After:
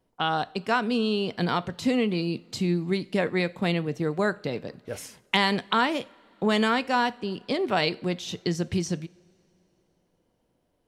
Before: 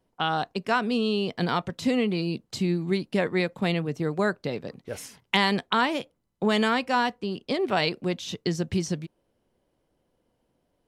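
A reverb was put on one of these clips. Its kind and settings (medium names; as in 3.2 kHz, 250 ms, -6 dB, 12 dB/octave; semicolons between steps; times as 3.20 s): two-slope reverb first 0.41 s, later 3.3 s, from -21 dB, DRR 16 dB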